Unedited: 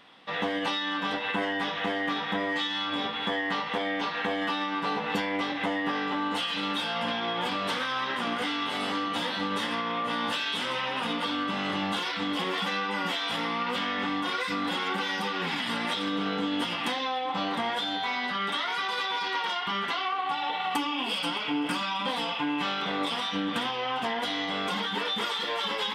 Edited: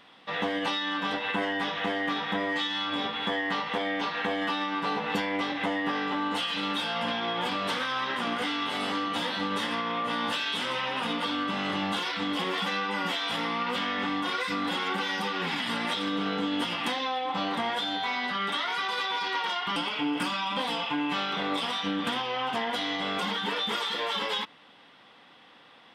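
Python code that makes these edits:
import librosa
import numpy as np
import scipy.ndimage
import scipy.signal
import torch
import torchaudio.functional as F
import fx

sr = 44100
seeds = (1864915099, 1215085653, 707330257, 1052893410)

y = fx.edit(x, sr, fx.cut(start_s=19.76, length_s=1.49), tone=tone)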